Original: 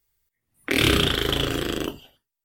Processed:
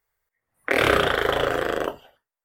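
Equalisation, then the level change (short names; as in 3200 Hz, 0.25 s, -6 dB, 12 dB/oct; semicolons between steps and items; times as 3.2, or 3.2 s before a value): band shelf 960 Hz +13 dB 2.5 oct; dynamic EQ 620 Hz, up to +5 dB, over -28 dBFS, Q 1.3; -7.0 dB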